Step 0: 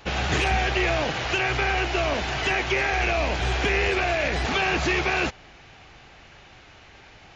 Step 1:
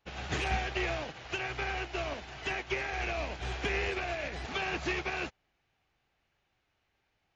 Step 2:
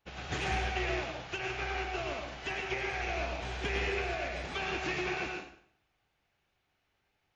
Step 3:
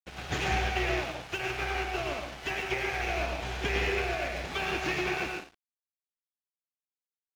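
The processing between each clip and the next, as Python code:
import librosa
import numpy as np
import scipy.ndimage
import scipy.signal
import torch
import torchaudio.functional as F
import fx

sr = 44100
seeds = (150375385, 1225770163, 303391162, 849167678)

y1 = fx.upward_expand(x, sr, threshold_db=-35.0, expansion=2.5)
y1 = y1 * librosa.db_to_amplitude(-6.5)
y2 = fx.rev_plate(y1, sr, seeds[0], rt60_s=0.61, hf_ratio=0.9, predelay_ms=90, drr_db=1.5)
y2 = y2 * librosa.db_to_amplitude(-2.5)
y3 = np.sign(y2) * np.maximum(np.abs(y2) - 10.0 ** (-51.0 / 20.0), 0.0)
y3 = y3 * librosa.db_to_amplitude(4.5)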